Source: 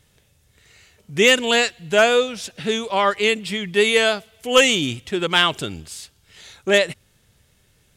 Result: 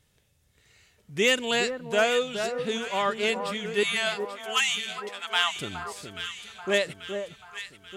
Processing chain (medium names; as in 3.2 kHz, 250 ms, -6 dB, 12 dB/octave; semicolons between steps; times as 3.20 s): 3.83–5.56 s: brick-wall FIR high-pass 650 Hz; echo whose repeats swap between lows and highs 418 ms, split 1.4 kHz, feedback 70%, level -7 dB; trim -8 dB